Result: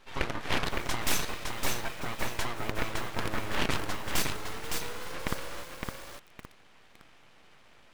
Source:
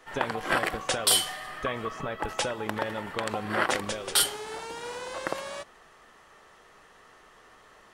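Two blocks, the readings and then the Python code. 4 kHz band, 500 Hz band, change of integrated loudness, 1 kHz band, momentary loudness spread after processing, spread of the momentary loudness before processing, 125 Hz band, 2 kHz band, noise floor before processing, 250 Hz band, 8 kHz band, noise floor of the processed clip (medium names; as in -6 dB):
-6.0 dB, -6.0 dB, -5.0 dB, -4.5 dB, 10 LU, 13 LU, +3.5 dB, -3.0 dB, -56 dBFS, -1.0 dB, -7.5 dB, -57 dBFS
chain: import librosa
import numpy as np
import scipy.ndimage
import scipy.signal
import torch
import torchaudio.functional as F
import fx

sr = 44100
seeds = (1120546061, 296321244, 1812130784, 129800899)

y = fx.high_shelf(x, sr, hz=4800.0, db=-10.5)
y = np.abs(y)
y = fx.echo_crushed(y, sr, ms=562, feedback_pct=35, bits=7, wet_db=-4)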